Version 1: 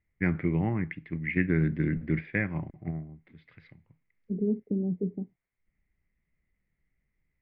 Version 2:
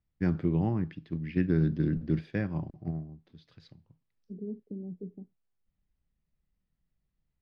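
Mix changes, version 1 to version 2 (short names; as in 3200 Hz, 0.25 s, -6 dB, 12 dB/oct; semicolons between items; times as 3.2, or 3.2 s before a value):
first voice: remove synth low-pass 2100 Hz, resonance Q 9.8; second voice -10.5 dB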